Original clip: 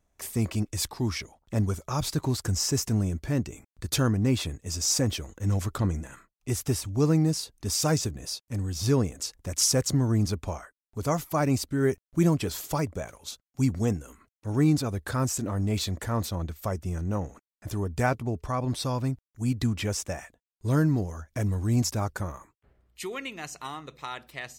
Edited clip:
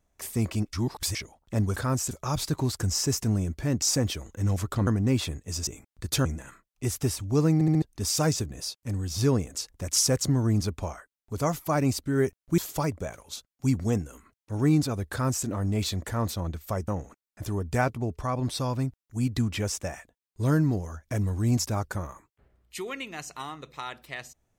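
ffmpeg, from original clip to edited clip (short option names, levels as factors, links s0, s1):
-filter_complex "[0:a]asplit=15[s0][s1][s2][s3][s4][s5][s6][s7][s8][s9][s10][s11][s12][s13][s14];[s0]atrim=end=0.732[s15];[s1]atrim=start=0.728:end=1.152,asetpts=PTS-STARTPTS,areverse[s16];[s2]atrim=start=1.148:end=1.762[s17];[s3]atrim=start=15.058:end=15.412[s18];[s4]atrim=start=1.758:end=3.472[s19];[s5]atrim=start=4.848:end=5.902[s20];[s6]atrim=start=4.048:end=4.852[s21];[s7]atrim=start=3.468:end=4.052[s22];[s8]atrim=start=5.898:end=7.262[s23];[s9]atrim=start=7.188:end=7.262[s24];[s10]atrim=start=7.188:end=7.262[s25];[s11]atrim=start=7.188:end=7.262[s26];[s12]atrim=start=7.468:end=12.232[s27];[s13]atrim=start=12.528:end=16.832[s28];[s14]atrim=start=17.128[s29];[s15][s16]acrossfade=d=0.004:c1=hsin:c2=hsin[s30];[s30][s17]acrossfade=d=0.004:c1=hsin:c2=hsin[s31];[s31][s18]acrossfade=d=0.004:c1=hsin:c2=hsin[s32];[s32][s19]acrossfade=d=0.004:c1=hsin:c2=hsin[s33];[s33][s20]acrossfade=d=0.004:c1=hsin:c2=hsin[s34];[s34][s21]acrossfade=d=0.004:c1=hsin:c2=hsin[s35];[s35][s22]acrossfade=d=0.004:c1=hsin:c2=hsin[s36];[s36][s23]acrossfade=d=0.004:c1=hsin:c2=hsin[s37];[s37][s24]acrossfade=d=0.004:c1=hsin:c2=hsin[s38];[s38][s25]acrossfade=d=0.004:c1=hsin:c2=hsin[s39];[s39][s26]acrossfade=d=0.004:c1=hsin:c2=hsin[s40];[s40][s27]acrossfade=d=0.004:c1=hsin:c2=hsin[s41];[s41][s28]acrossfade=d=0.004:c1=hsin:c2=hsin[s42];[s42][s29]acrossfade=d=0.004:c1=hsin:c2=hsin"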